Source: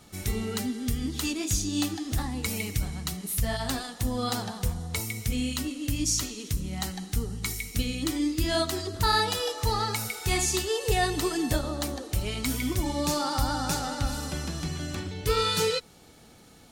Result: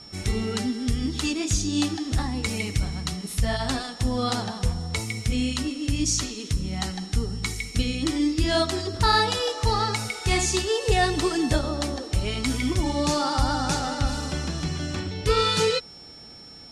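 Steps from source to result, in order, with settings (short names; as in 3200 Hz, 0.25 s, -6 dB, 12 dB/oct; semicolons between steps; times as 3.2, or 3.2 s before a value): whine 5400 Hz -46 dBFS; Bessel low-pass 7200 Hz, order 8; gain +4 dB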